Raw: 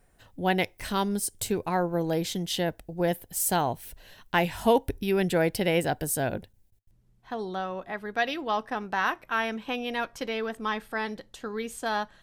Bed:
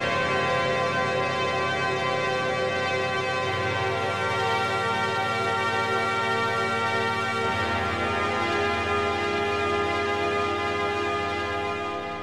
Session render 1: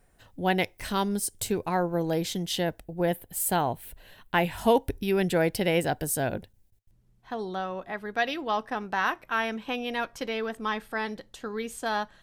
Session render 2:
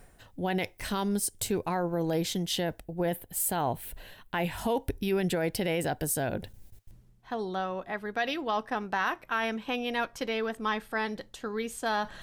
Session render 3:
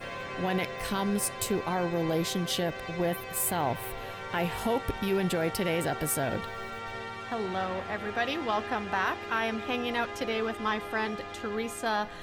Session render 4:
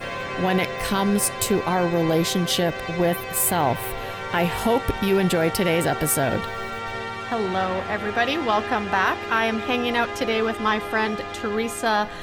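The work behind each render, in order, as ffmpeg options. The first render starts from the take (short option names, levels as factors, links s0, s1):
-filter_complex "[0:a]asettb=1/sr,asplit=3[s0][s1][s2];[s0]atrim=end=2.844[s3];[s1]atrim=start=2.84:end=4.58,asetpts=PTS-STARTPTS,afade=t=in:d=0.004:c=qsin,afade=t=out:st=1.736:d=0.004:c=qsin,equalizer=f=5700:t=o:w=0.66:g=-9[s4];[s2]atrim=start=4.576[s5];[s3][s4]acrossfade=d=0.004:c1=hsin:c2=qsin[s6];[s6][s5]acrossfade=d=0.004:c1=qsin:c2=hsin"
-af "alimiter=limit=0.112:level=0:latency=1:release=27,areverse,acompressor=mode=upward:threshold=0.0178:ratio=2.5,areverse"
-filter_complex "[1:a]volume=0.211[s0];[0:a][s0]amix=inputs=2:normalize=0"
-af "volume=2.51"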